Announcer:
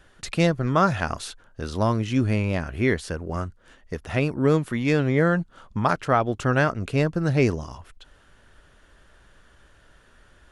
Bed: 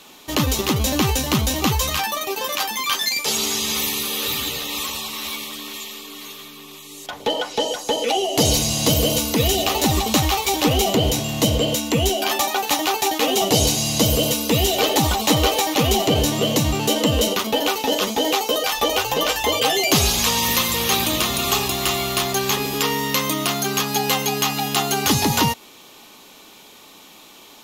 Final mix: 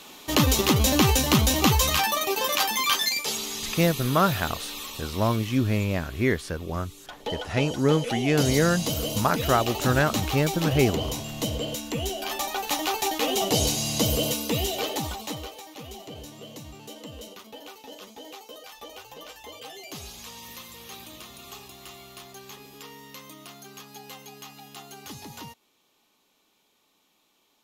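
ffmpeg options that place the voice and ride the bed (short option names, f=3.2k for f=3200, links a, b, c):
-filter_complex "[0:a]adelay=3400,volume=-1.5dB[a];[1:a]volume=4dB,afade=t=out:st=2.83:d=0.6:silence=0.316228,afade=t=in:st=12.22:d=0.68:silence=0.595662,afade=t=out:st=14.27:d=1.26:silence=0.141254[b];[a][b]amix=inputs=2:normalize=0"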